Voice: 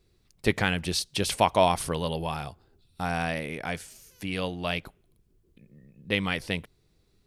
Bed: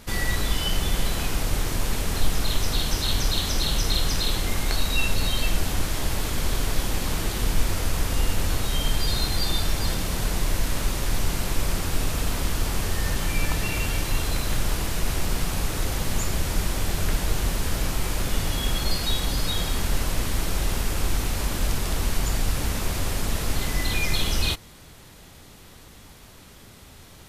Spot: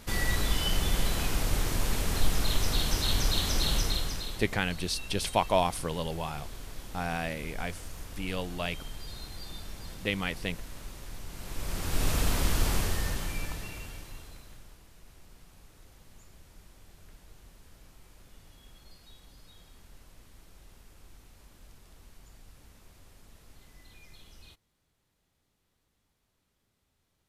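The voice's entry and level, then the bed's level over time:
3.95 s, -4.0 dB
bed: 3.77 s -3.5 dB
4.55 s -18 dB
11.28 s -18 dB
12.09 s -1.5 dB
12.73 s -1.5 dB
14.81 s -29.5 dB

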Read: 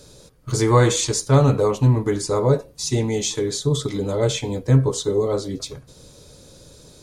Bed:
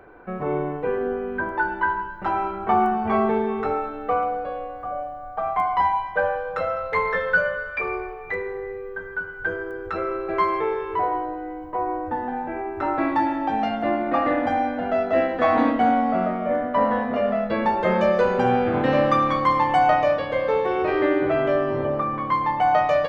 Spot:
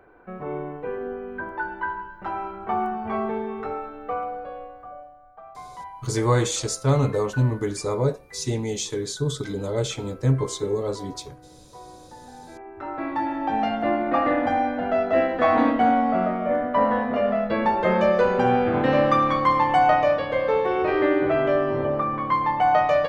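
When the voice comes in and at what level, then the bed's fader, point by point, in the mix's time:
5.55 s, -5.0 dB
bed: 4.62 s -6 dB
5.43 s -18.5 dB
12.12 s -18.5 dB
13.57 s 0 dB

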